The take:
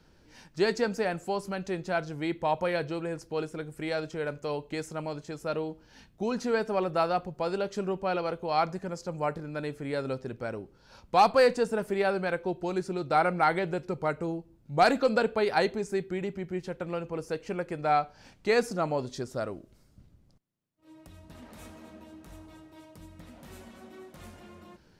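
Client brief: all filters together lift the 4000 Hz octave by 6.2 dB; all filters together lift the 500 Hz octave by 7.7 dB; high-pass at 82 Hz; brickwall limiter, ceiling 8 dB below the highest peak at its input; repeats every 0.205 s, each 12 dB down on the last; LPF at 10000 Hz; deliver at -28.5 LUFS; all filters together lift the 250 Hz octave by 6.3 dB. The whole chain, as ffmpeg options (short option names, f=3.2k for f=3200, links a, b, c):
-af "highpass=82,lowpass=10k,equalizer=f=250:t=o:g=6,equalizer=f=500:t=o:g=7.5,equalizer=f=4k:t=o:g=7,alimiter=limit=-12.5dB:level=0:latency=1,aecho=1:1:205|410|615:0.251|0.0628|0.0157,volume=-3.5dB"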